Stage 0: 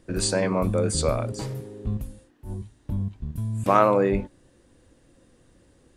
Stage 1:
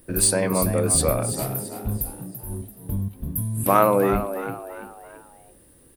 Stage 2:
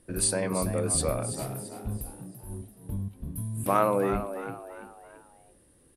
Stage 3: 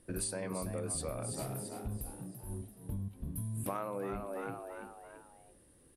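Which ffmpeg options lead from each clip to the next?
-filter_complex "[0:a]aexciter=amount=8.2:drive=9.9:freq=10000,asplit=5[s0][s1][s2][s3][s4];[s1]adelay=336,afreqshift=82,volume=0.299[s5];[s2]adelay=672,afreqshift=164,volume=0.126[s6];[s3]adelay=1008,afreqshift=246,volume=0.0525[s7];[s4]adelay=1344,afreqshift=328,volume=0.0221[s8];[s0][s5][s6][s7][s8]amix=inputs=5:normalize=0,volume=1.12"
-af "lowpass=f=11000:w=0.5412,lowpass=f=11000:w=1.3066,volume=0.473"
-af "acompressor=threshold=0.0251:ratio=6,volume=0.75"

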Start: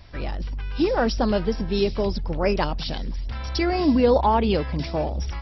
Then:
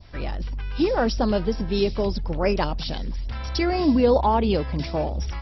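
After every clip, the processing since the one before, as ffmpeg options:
-af "adynamicequalizer=threshold=0.0158:dfrequency=1900:dqfactor=0.91:tfrequency=1900:tqfactor=0.91:attack=5:release=100:ratio=0.375:range=2:mode=cutabove:tftype=bell"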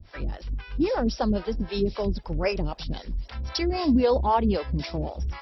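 -filter_complex "[0:a]acrossover=split=420[s0][s1];[s0]aeval=exprs='val(0)*(1-1/2+1/2*cos(2*PI*3.8*n/s))':c=same[s2];[s1]aeval=exprs='val(0)*(1-1/2-1/2*cos(2*PI*3.8*n/s))':c=same[s3];[s2][s3]amix=inputs=2:normalize=0,volume=1.19"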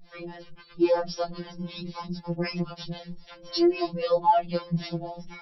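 -af "afftfilt=real='re*2.83*eq(mod(b,8),0)':imag='im*2.83*eq(mod(b,8),0)':win_size=2048:overlap=0.75,volume=1.12"

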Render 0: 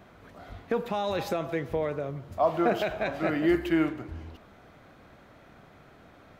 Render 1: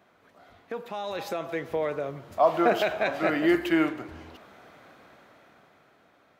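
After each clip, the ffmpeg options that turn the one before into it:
-af "highpass=f=380:p=1,dynaudnorm=f=270:g=11:m=3.76,volume=0.501"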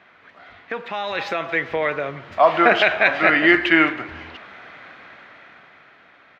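-af "firequalizer=gain_entry='entry(480,0);entry(1900,13);entry(10000,-19)':delay=0.05:min_phase=1,volume=1.58"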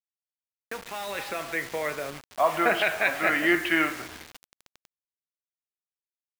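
-af "flanger=delay=6:depth=9.9:regen=79:speed=0.36:shape=sinusoidal,acrusher=bits=5:mix=0:aa=0.000001,volume=0.668"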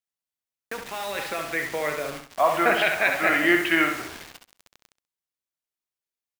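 -af "aecho=1:1:66|132|198:0.447|0.103|0.0236,volume=1.26"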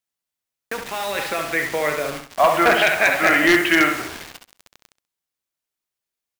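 -af "aeval=exprs='0.237*(abs(mod(val(0)/0.237+3,4)-2)-1)':c=same,volume=1.88"

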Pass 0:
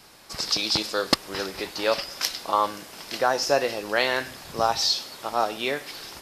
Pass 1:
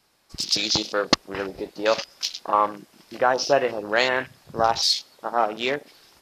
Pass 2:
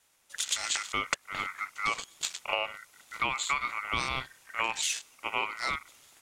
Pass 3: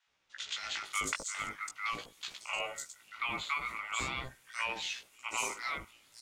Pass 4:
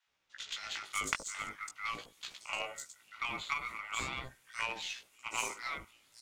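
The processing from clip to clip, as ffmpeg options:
-af "afwtdn=0.0251,volume=1.33"
-af "equalizer=f=2000:t=o:w=1:g=-4,equalizer=f=4000:t=o:w=1:g=-6,equalizer=f=8000:t=o:w=1:g=10,aeval=exprs='val(0)*sin(2*PI*1700*n/s)':c=same,acompressor=threshold=0.0631:ratio=6,volume=0.841"
-filter_complex "[0:a]flanger=delay=15.5:depth=3.3:speed=0.42,acrossover=split=800|5400[s0][s1][s2];[s0]adelay=70[s3];[s2]adelay=550[s4];[s3][s1][s4]amix=inputs=3:normalize=0,volume=0.891"
-af "aeval=exprs='0.158*(cos(1*acos(clip(val(0)/0.158,-1,1)))-cos(1*PI/2))+0.0355*(cos(3*acos(clip(val(0)/0.158,-1,1)))-cos(3*PI/2))+0.00141*(cos(6*acos(clip(val(0)/0.158,-1,1)))-cos(6*PI/2))':c=same,volume=2.11"

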